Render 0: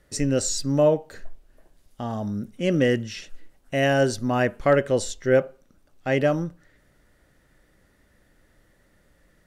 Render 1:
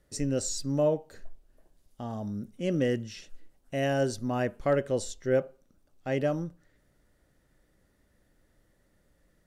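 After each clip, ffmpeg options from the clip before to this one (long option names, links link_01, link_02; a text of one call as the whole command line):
ffmpeg -i in.wav -af "equalizer=frequency=1900:width_type=o:width=1.9:gain=-4.5,volume=-6dB" out.wav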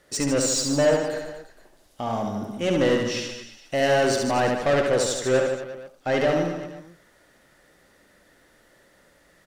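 ffmpeg -i in.wav -filter_complex "[0:a]asplit=2[link_01][link_02];[link_02]highpass=frequency=720:poles=1,volume=21dB,asoftclip=type=tanh:threshold=-14dB[link_03];[link_01][link_03]amix=inputs=2:normalize=0,lowpass=frequency=5600:poles=1,volume=-6dB,aecho=1:1:70|150.5|243.1|349.5|472:0.631|0.398|0.251|0.158|0.1" out.wav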